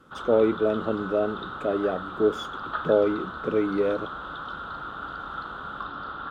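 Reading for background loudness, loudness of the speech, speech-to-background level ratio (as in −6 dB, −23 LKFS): −35.5 LKFS, −26.0 LKFS, 9.5 dB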